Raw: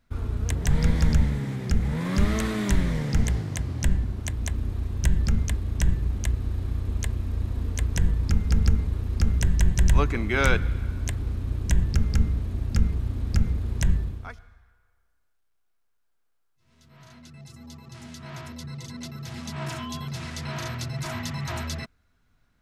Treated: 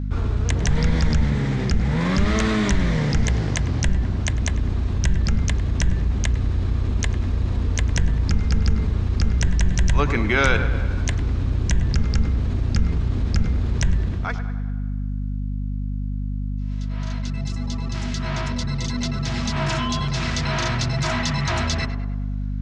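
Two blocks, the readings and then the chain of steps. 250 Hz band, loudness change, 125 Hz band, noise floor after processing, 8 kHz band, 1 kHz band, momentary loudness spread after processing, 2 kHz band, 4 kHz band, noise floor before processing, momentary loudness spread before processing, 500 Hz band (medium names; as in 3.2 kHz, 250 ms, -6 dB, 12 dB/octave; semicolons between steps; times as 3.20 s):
+5.5 dB, +3.5 dB, +4.5 dB, -26 dBFS, +5.0 dB, +7.5 dB, 8 LU, +6.5 dB, +8.5 dB, -69 dBFS, 15 LU, +6.0 dB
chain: low-pass 6.8 kHz 24 dB/octave; bass shelf 490 Hz -3 dB; tape echo 101 ms, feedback 68%, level -12 dB, low-pass 1.9 kHz; hum 50 Hz, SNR 13 dB; level flattener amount 50%; trim +2.5 dB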